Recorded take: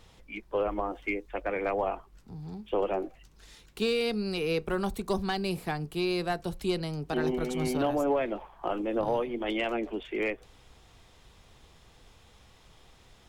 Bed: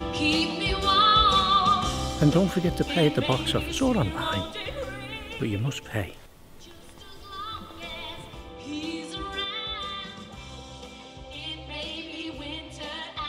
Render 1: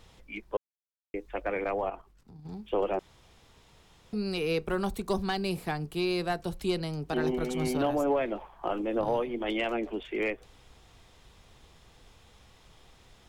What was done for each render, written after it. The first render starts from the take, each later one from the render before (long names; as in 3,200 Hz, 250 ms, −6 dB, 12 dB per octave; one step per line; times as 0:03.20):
0:00.57–0:01.14: silence
0:01.64–0:02.49: output level in coarse steps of 10 dB
0:02.99–0:04.13: fill with room tone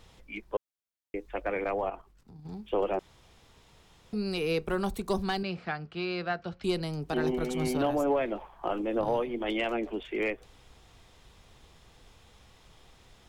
0:05.43–0:06.64: loudspeaker in its box 100–4,500 Hz, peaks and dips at 140 Hz −7 dB, 290 Hz −8 dB, 420 Hz −7 dB, 950 Hz −6 dB, 1,400 Hz +7 dB, 3,700 Hz −5 dB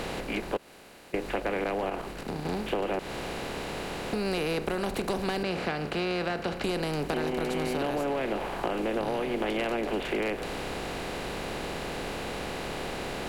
compressor on every frequency bin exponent 0.4
downward compressor, threshold −26 dBFS, peak gain reduction 7.5 dB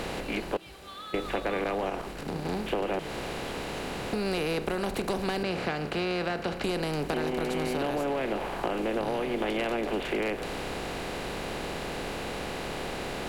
mix in bed −23.5 dB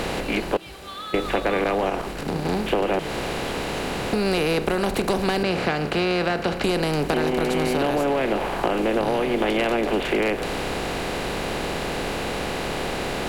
level +7.5 dB